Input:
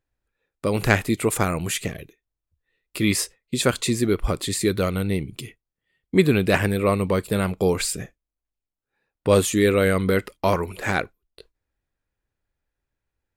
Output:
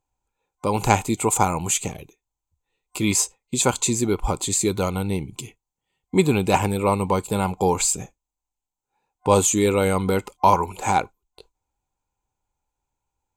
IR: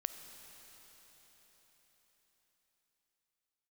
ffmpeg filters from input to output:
-af "superequalizer=9b=3.98:11b=0.316:15b=3.16,volume=-1dB"

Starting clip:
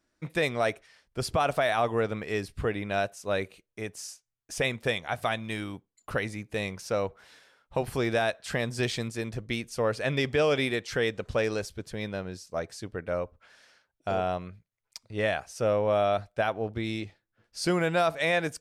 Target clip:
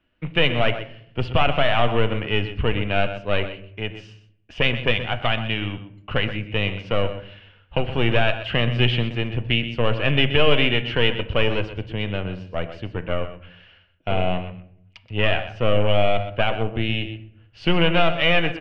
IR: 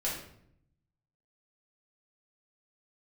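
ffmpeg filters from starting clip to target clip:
-filter_complex "[0:a]aemphasis=mode=reproduction:type=75fm,aeval=exprs='0.178*(cos(1*acos(clip(val(0)/0.178,-1,1)))-cos(1*PI/2))+0.0224*(cos(4*acos(clip(val(0)/0.178,-1,1)))-cos(4*PI/2))':channel_layout=same,acrossover=split=150[link_01][link_02];[link_01]acontrast=86[link_03];[link_03][link_02]amix=inputs=2:normalize=0,lowpass=frequency=2900:width_type=q:width=12,aecho=1:1:125:0.251,asplit=2[link_04][link_05];[1:a]atrim=start_sample=2205,lowpass=2900[link_06];[link_05][link_06]afir=irnorm=-1:irlink=0,volume=-14dB[link_07];[link_04][link_07]amix=inputs=2:normalize=0,volume=1.5dB"

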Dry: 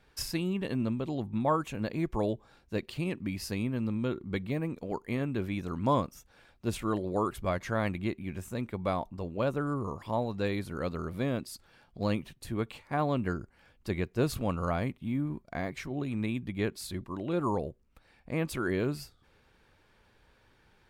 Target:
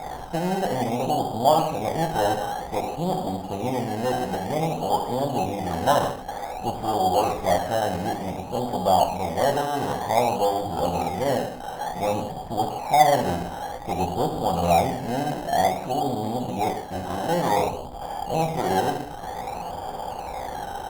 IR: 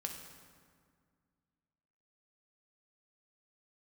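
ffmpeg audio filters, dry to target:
-filter_complex "[0:a]aeval=exprs='val(0)+0.5*0.0355*sgn(val(0))':channel_layout=same,asplit=2[link_01][link_02];[link_02]adelay=16,volume=-13dB[link_03];[link_01][link_03]amix=inputs=2:normalize=0,aeval=exprs='0.237*(cos(1*acos(clip(val(0)/0.237,-1,1)))-cos(1*PI/2))+0.0422*(cos(8*acos(clip(val(0)/0.237,-1,1)))-cos(8*PI/2))':channel_layout=same,lowpass=frequency=770:width_type=q:width=9[link_04];[1:a]atrim=start_sample=2205,afade=type=out:start_time=0.23:duration=0.01,atrim=end_sample=10584[link_05];[link_04][link_05]afir=irnorm=-1:irlink=0,asplit=2[link_06][link_07];[link_07]acrusher=samples=15:mix=1:aa=0.000001:lfo=1:lforange=9:lforate=0.54,volume=-6dB[link_08];[link_06][link_08]amix=inputs=2:normalize=0,lowshelf=frequency=450:gain=-7.5" -ar 48000 -c:a libopus -b:a 64k

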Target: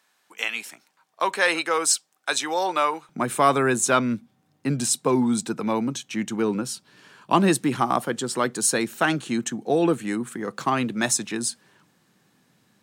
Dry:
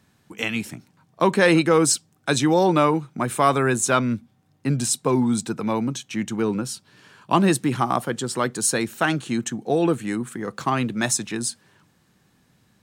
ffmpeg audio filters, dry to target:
ffmpeg -i in.wav -af "asetnsamples=nb_out_samples=441:pad=0,asendcmd='3.09 highpass f 160',highpass=730" out.wav

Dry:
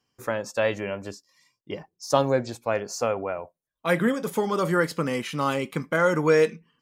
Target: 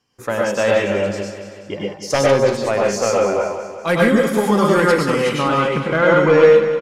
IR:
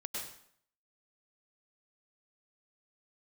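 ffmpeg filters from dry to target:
-filter_complex "[0:a]aeval=exprs='0.562*sin(PI/2*2.24*val(0)/0.562)':channel_layout=same,asetnsamples=nb_out_samples=441:pad=0,asendcmd='5.29 lowpass f 3800',lowpass=12000,aecho=1:1:190|380|570|760|950|1140:0.299|0.164|0.0903|0.0497|0.0273|0.015[link_01];[1:a]atrim=start_sample=2205,atrim=end_sample=6615[link_02];[link_01][link_02]afir=irnorm=-1:irlink=0,volume=-1dB"

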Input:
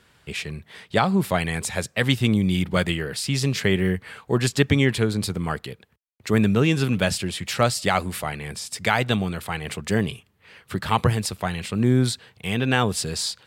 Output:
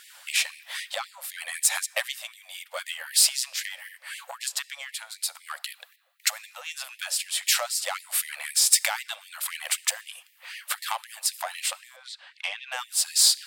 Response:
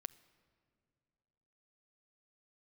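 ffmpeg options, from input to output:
-filter_complex "[0:a]tiltshelf=frequency=1300:gain=5,acompressor=threshold=-30dB:ratio=12,asettb=1/sr,asplit=3[link_01][link_02][link_03];[link_01]atrim=end=11.964[link_04];[link_02]atrim=start=11.96:end=12.72,asetpts=PTS-STARTPTS,afade=type=in:duration=0.004:curve=qsin,afade=type=out:start_time=0.756:duration=0.004:curve=qsin,highpass=260,lowpass=3400[link_05];[link_03]atrim=start=12.716[link_06];[link_04][link_05]acrossfade=duration=0.004:curve1=hsin:curve2=qsin[link_07];[link_07][link_06]acrossfade=duration=0.004:curve1=qsin:curve2=hsin,aeval=exprs='0.168*(cos(1*acos(clip(val(0)/0.168,-1,1)))-cos(1*PI/2))+0.00668*(cos(8*acos(clip(val(0)/0.168,-1,1)))-cos(8*PI/2))':channel_layout=same,crystalizer=i=6:c=0,asplit=2[link_08][link_09];[1:a]atrim=start_sample=2205[link_10];[link_09][link_10]afir=irnorm=-1:irlink=0,volume=15dB[link_11];[link_08][link_11]amix=inputs=2:normalize=0,afftfilt=real='re*gte(b*sr/1024,500*pow(1800/500,0.5+0.5*sin(2*PI*3.9*pts/sr)))':imag='im*gte(b*sr/1024,500*pow(1800/500,0.5+0.5*sin(2*PI*3.9*pts/sr)))':win_size=1024:overlap=0.75,volume=-9.5dB"

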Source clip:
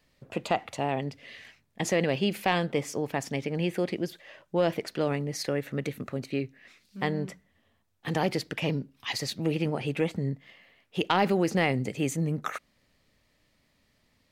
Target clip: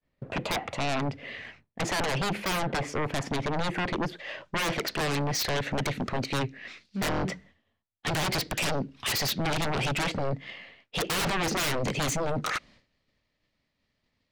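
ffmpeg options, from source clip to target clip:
ffmpeg -i in.wav -af "agate=range=-33dB:threshold=-56dB:ratio=3:detection=peak,asetnsamples=nb_out_samples=441:pad=0,asendcmd='4.19 equalizer g 6',equalizer=frequency=5100:width=0.59:gain=-5.5,adynamicsmooth=sensitivity=2:basefreq=4600,aeval=exprs='0.0708*sin(PI/2*2.51*val(0)/0.0708)':channel_layout=same,volume=-1.5dB" out.wav

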